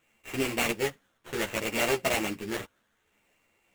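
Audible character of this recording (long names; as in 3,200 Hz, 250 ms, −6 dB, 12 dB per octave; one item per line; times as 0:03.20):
a buzz of ramps at a fixed pitch in blocks of 16 samples
phaser sweep stages 12, 0.64 Hz, lowest notch 800–1,600 Hz
aliases and images of a low sample rate 5,000 Hz, jitter 20%
a shimmering, thickened sound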